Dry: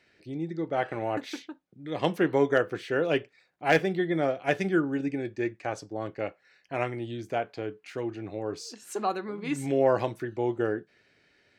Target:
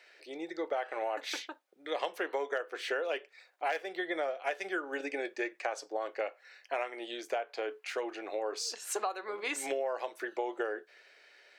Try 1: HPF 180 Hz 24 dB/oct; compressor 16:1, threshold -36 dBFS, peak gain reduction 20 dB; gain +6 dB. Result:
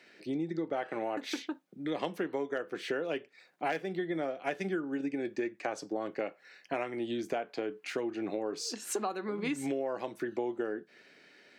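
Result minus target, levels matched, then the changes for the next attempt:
250 Hz band +8.5 dB
change: HPF 480 Hz 24 dB/oct

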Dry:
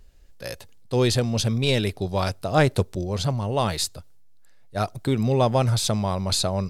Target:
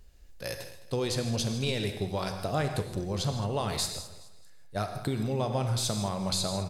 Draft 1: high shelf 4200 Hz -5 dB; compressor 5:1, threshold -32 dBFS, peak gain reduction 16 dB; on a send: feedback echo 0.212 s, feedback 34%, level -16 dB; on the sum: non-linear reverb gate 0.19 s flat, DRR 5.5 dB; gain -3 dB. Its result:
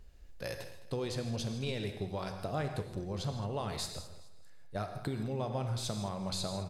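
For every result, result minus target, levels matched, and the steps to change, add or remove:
compressor: peak gain reduction +5.5 dB; 8000 Hz band -3.5 dB
change: compressor 5:1, threshold -24.5 dBFS, peak gain reduction 10 dB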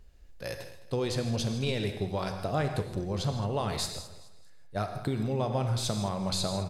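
8000 Hz band -3.5 dB
change: high shelf 4200 Hz +2.5 dB

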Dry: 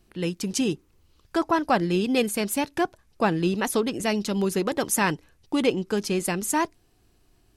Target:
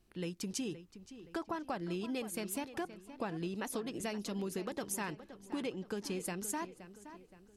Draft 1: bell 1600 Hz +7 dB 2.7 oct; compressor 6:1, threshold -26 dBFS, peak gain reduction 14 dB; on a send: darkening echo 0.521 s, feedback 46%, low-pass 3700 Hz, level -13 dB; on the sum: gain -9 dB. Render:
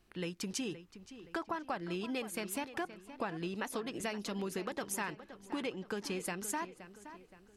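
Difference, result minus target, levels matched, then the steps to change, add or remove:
2000 Hz band +3.5 dB
remove: bell 1600 Hz +7 dB 2.7 oct

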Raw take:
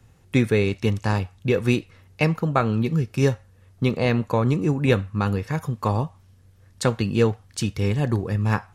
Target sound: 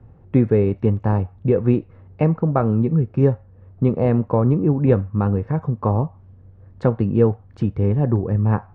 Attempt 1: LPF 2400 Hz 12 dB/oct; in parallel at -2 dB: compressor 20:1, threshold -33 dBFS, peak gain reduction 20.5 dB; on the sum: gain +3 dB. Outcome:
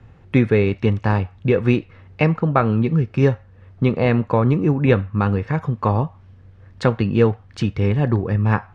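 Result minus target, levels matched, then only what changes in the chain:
2000 Hz band +12.0 dB
change: LPF 860 Hz 12 dB/oct

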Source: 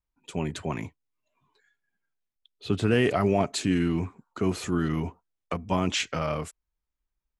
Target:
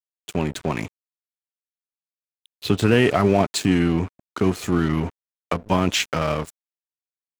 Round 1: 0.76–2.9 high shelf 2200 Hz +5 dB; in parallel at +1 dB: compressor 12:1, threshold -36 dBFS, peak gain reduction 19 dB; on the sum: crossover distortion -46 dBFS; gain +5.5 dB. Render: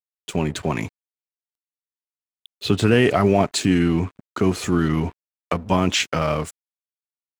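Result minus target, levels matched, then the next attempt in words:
crossover distortion: distortion -8 dB
0.76–2.9 high shelf 2200 Hz +5 dB; in parallel at +1 dB: compressor 12:1, threshold -36 dBFS, peak gain reduction 19 dB; on the sum: crossover distortion -37 dBFS; gain +5.5 dB

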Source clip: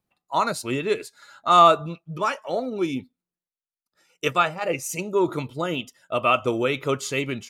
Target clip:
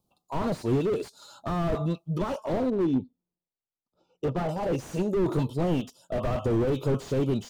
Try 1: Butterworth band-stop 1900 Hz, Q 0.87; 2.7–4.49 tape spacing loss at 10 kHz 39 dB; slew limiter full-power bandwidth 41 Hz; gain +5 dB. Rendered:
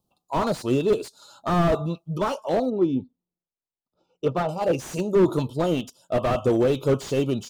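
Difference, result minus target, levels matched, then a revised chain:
slew limiter: distortion -6 dB
Butterworth band-stop 1900 Hz, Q 0.87; 2.7–4.49 tape spacing loss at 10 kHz 39 dB; slew limiter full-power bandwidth 15.5 Hz; gain +5 dB

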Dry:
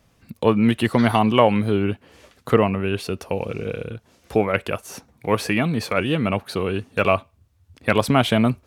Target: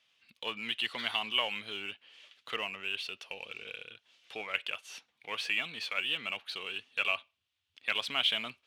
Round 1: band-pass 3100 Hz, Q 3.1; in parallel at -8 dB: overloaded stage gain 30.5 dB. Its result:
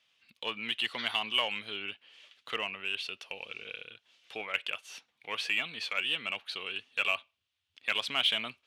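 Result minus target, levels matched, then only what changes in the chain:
overloaded stage: distortion -6 dB
change: overloaded stage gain 42.5 dB

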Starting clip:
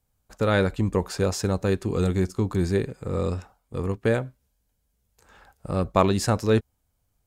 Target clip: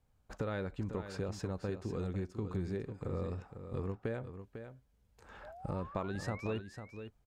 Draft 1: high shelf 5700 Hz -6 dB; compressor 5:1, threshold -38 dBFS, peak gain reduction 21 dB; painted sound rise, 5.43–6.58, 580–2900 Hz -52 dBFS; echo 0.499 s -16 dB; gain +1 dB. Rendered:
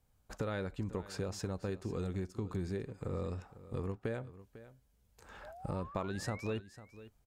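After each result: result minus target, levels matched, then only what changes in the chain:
8000 Hz band +5.0 dB; echo-to-direct -6.5 dB
change: high shelf 5700 Hz -16 dB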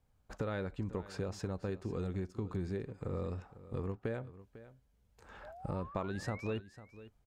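echo-to-direct -6.5 dB
change: echo 0.499 s -9.5 dB

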